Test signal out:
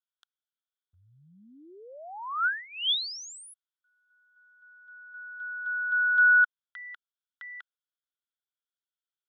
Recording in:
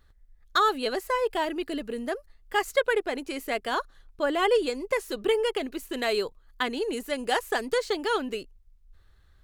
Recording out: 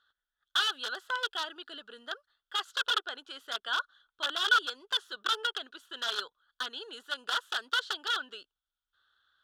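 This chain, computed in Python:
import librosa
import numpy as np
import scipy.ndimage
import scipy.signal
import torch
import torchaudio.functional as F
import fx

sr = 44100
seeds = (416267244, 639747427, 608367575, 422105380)

y = (np.mod(10.0 ** (19.0 / 20.0) * x + 1.0, 2.0) - 1.0) / 10.0 ** (19.0 / 20.0)
y = fx.double_bandpass(y, sr, hz=2200.0, octaves=1.2)
y = y * librosa.db_to_amplitude(6.0)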